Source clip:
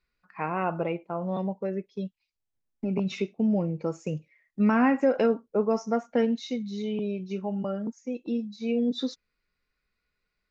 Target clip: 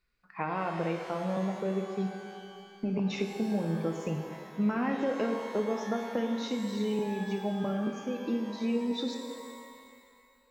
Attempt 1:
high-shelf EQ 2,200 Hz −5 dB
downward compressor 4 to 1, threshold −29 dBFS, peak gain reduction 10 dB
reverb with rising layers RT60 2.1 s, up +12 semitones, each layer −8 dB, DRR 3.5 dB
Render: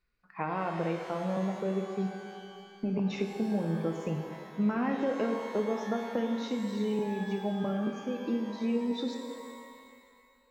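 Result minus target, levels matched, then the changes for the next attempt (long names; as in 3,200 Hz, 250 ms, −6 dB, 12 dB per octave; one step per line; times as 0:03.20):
4,000 Hz band −2.5 dB
remove: high-shelf EQ 2,200 Hz −5 dB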